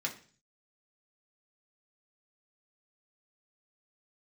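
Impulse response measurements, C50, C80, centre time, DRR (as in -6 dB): 12.0 dB, 17.0 dB, 13 ms, -1.5 dB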